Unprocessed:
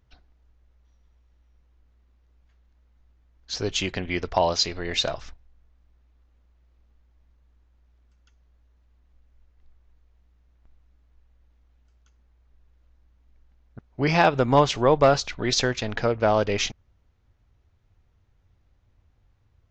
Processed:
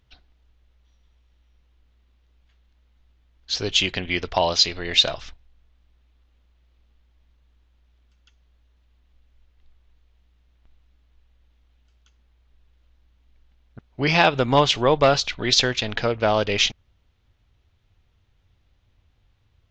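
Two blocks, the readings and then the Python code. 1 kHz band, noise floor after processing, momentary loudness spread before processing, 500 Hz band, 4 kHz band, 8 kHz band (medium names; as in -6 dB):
+0.5 dB, -64 dBFS, 10 LU, 0.0 dB, +7.5 dB, +3.0 dB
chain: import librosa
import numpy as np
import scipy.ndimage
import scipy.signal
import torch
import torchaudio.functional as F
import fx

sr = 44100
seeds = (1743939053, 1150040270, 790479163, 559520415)

y = fx.peak_eq(x, sr, hz=3300.0, db=9.5, octaves=1.2)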